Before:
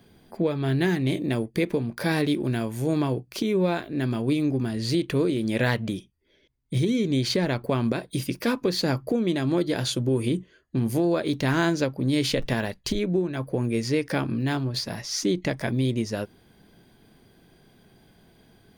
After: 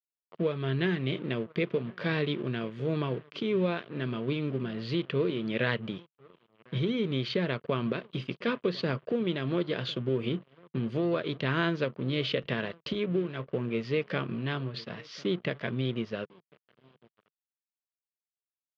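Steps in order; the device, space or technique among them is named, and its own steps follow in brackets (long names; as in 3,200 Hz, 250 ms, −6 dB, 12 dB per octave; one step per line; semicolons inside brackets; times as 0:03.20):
slap from a distant wall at 180 metres, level −20 dB
blown loudspeaker (dead-zone distortion −42 dBFS; loudspeaker in its box 140–3,700 Hz, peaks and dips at 150 Hz +4 dB, 290 Hz −7 dB, 440 Hz +3 dB, 810 Hz −9 dB, 1,200 Hz +4 dB, 3,000 Hz +6 dB)
level −3.5 dB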